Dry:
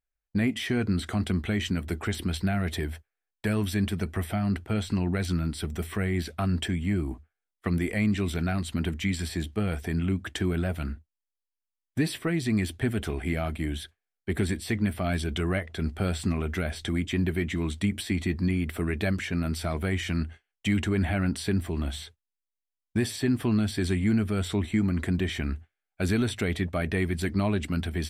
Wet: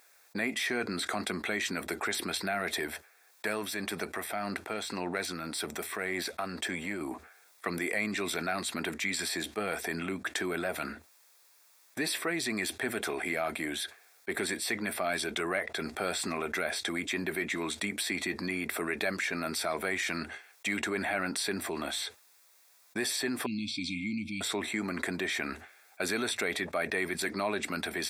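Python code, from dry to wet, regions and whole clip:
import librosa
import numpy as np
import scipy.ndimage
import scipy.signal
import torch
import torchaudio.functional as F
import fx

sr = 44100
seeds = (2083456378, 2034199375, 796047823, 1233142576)

y = fx.chain(x, sr, fx.halfwave_gain(db=-3.0),
    fx.tremolo(hz=1.8, depth=0.51), at=(2.87, 7.01))
y = fx.chain(y, sr, fx.brickwall_bandstop(low_hz=320.0, high_hz=2100.0),
    fx.air_absorb(metres=140.0), at=(23.46, 24.41))
y = scipy.signal.sosfilt(scipy.signal.butter(2, 510.0, 'highpass', fs=sr, output='sos'), y)
y = fx.notch(y, sr, hz=3000.0, q=5.2)
y = fx.env_flatten(y, sr, amount_pct=50)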